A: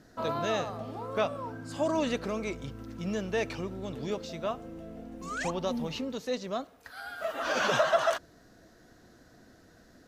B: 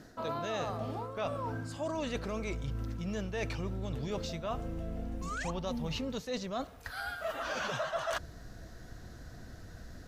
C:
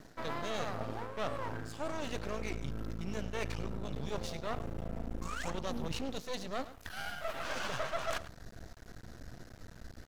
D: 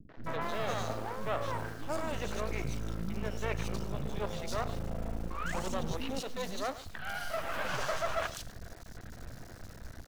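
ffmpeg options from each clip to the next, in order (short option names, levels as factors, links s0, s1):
-af "asubboost=boost=5:cutoff=120,areverse,acompressor=threshold=0.0126:ratio=6,areverse,volume=1.78"
-af "aecho=1:1:105:0.168,aeval=exprs='max(val(0),0)':c=same,volume=1.26"
-filter_complex "[0:a]asplit=2[s0][s1];[s1]acrusher=bits=7:mix=0:aa=0.000001,volume=0.501[s2];[s0][s2]amix=inputs=2:normalize=0,acrossover=split=280|3400[s3][s4][s5];[s4]adelay=90[s6];[s5]adelay=240[s7];[s3][s6][s7]amix=inputs=3:normalize=0"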